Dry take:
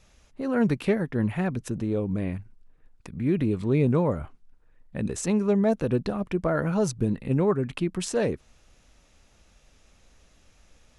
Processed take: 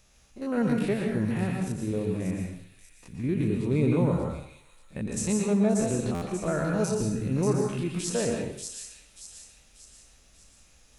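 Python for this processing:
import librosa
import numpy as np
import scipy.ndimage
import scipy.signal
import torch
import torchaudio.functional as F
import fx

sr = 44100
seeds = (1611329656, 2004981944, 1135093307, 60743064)

y = fx.spec_steps(x, sr, hold_ms=50)
y = fx.high_shelf(y, sr, hz=5700.0, db=10.0)
y = fx.echo_wet_highpass(y, sr, ms=586, feedback_pct=45, hz=4000.0, wet_db=-3.5)
y = fx.rev_plate(y, sr, seeds[0], rt60_s=0.63, hf_ratio=0.95, predelay_ms=105, drr_db=1.0)
y = fx.buffer_glitch(y, sr, at_s=(6.14,), block=512, repeats=6)
y = y * 10.0 ** (-3.0 / 20.0)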